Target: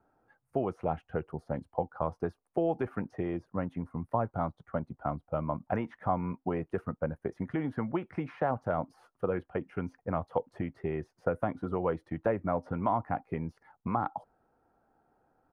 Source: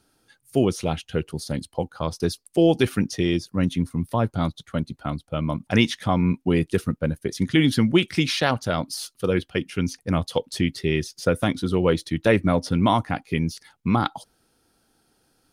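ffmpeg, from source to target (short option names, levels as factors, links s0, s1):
-filter_complex "[0:a]acrossover=split=520|1200|2700[s0][s1][s2][s3];[s0]acompressor=threshold=0.0501:ratio=4[s4];[s1]acompressor=threshold=0.02:ratio=4[s5];[s2]acompressor=threshold=0.0178:ratio=4[s6];[s3]acompressor=threshold=0.0126:ratio=4[s7];[s4][s5][s6][s7]amix=inputs=4:normalize=0,firequalizer=gain_entry='entry(300,0);entry(740,10);entry(3600,-27)':delay=0.05:min_phase=1,volume=0.473"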